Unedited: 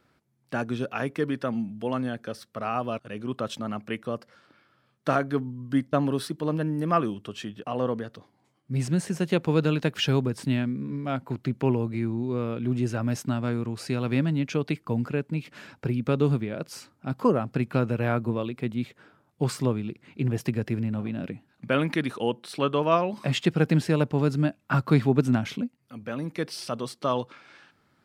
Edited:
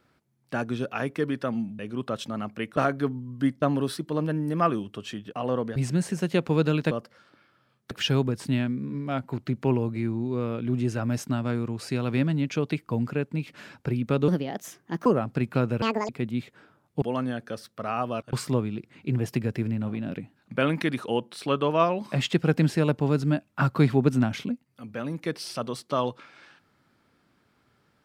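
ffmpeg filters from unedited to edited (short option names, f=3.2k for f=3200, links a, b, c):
-filter_complex "[0:a]asplit=12[a][b][c][d][e][f][g][h][i][j][k][l];[a]atrim=end=1.792[m];[b]atrim=start=3.098:end=4.082[n];[c]atrim=start=5.078:end=8.072[o];[d]atrim=start=8.738:end=9.892[p];[e]atrim=start=4.078:end=5.082[q];[f]atrim=start=9.888:end=16.264[r];[g]atrim=start=16.26:end=17.25,asetpts=PTS-STARTPTS,asetrate=56007,aresample=44100,atrim=end_sample=34377,asetpts=PTS-STARTPTS[s];[h]atrim=start=17.246:end=18.014[t];[i]atrim=start=18.01:end=18.52,asetpts=PTS-STARTPTS,asetrate=83349,aresample=44100[u];[j]atrim=start=18.516:end=19.452[v];[k]atrim=start=1.788:end=3.102[w];[l]atrim=start=19.448[x];[m][n]acrossfade=d=0.004:c1=hsin:c2=hsin[y];[y][o]acrossfade=d=0.004:c1=hsin:c2=hsin[z];[z][p]acrossfade=d=0.004:c1=hsin:c2=hsin[aa];[aa][q]acrossfade=d=0.004:c1=hsin:c2=hsin[ab];[ab][r]acrossfade=d=0.004:c1=hsin:c2=hsin[ac];[ac][s]acrossfade=d=0.004:c1=hsin:c2=hsin[ad];[ad][t]acrossfade=d=0.004:c1=hsin:c2=hsin[ae];[ae][u]acrossfade=d=0.004:c1=hsin:c2=hsin[af];[af][v]acrossfade=d=0.004:c1=hsin:c2=hsin[ag];[ag][w]acrossfade=d=0.004:c1=hsin:c2=hsin[ah];[ah][x]acrossfade=d=0.004:c1=hsin:c2=hsin"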